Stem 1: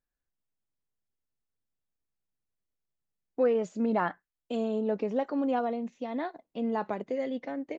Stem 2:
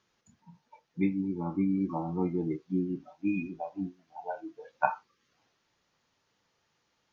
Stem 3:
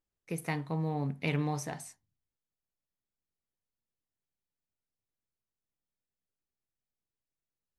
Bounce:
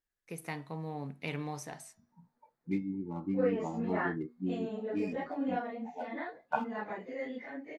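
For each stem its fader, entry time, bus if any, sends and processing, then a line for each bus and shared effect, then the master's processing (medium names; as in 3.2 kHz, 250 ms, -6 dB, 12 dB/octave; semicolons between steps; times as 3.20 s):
-7.5 dB, 0.00 s, no send, phase randomisation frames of 100 ms; peaking EQ 1.9 kHz +10.5 dB 0.63 oct
+2.5 dB, 1.70 s, no send, local Wiener filter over 15 samples; feedback comb 240 Hz, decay 0.57 s, harmonics odd, mix 60%
-4.0 dB, 0.00 s, no send, bass shelf 150 Hz -9 dB; de-hum 324.2 Hz, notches 18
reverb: none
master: none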